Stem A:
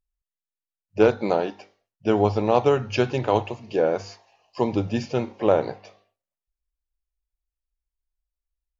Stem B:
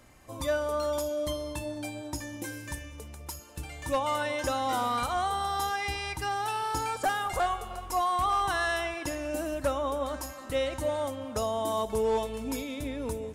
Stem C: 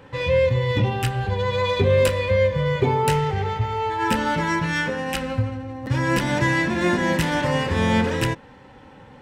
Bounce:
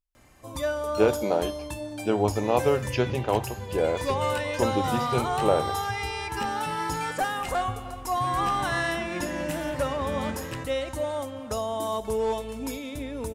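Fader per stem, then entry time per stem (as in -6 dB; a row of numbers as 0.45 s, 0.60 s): -4.0 dB, +0.5 dB, -13.0 dB; 0.00 s, 0.15 s, 2.30 s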